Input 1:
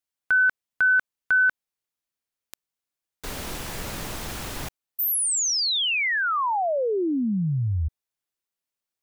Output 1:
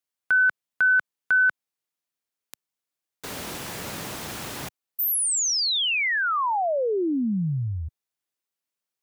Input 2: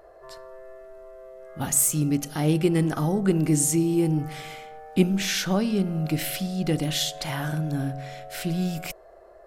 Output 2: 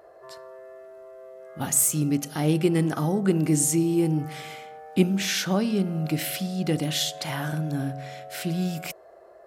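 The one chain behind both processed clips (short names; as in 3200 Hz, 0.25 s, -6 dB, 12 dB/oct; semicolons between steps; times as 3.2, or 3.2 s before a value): HPF 110 Hz 12 dB/oct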